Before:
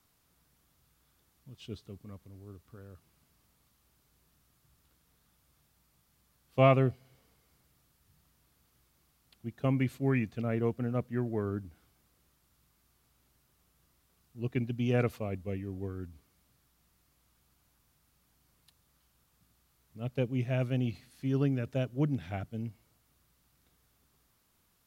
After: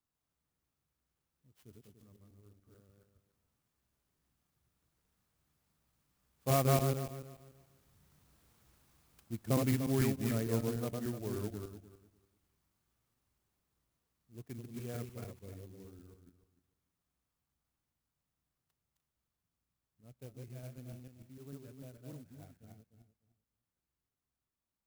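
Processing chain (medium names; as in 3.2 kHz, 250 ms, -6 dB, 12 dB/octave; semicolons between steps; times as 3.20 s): backward echo that repeats 147 ms, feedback 43%, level -1.5 dB; Doppler pass-by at 8.77 s, 6 m/s, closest 6.3 m; sampling jitter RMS 0.083 ms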